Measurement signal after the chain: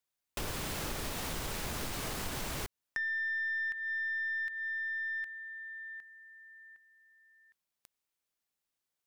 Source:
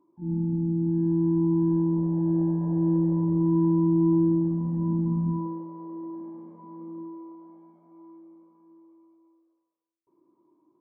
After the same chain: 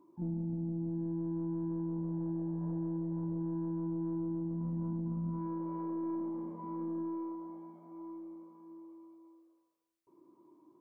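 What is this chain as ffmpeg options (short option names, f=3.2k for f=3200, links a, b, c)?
-af "acompressor=threshold=-36dB:ratio=12,aeval=exprs='(tanh(31.6*val(0)+0.15)-tanh(0.15))/31.6':c=same,volume=3.5dB"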